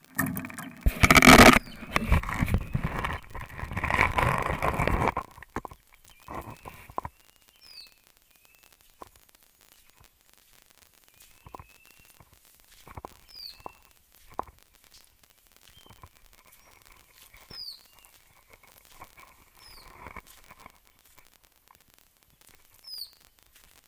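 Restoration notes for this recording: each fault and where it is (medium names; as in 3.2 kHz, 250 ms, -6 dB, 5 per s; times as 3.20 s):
crackle 36 per s -34 dBFS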